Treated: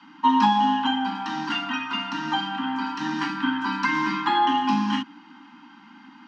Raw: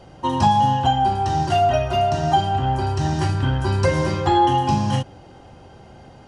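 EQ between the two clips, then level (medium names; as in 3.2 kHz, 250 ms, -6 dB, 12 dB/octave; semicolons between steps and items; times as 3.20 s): steep high-pass 220 Hz 48 dB/octave; Chebyshev band-stop 300–900 Hz, order 4; distance through air 220 m; +6.0 dB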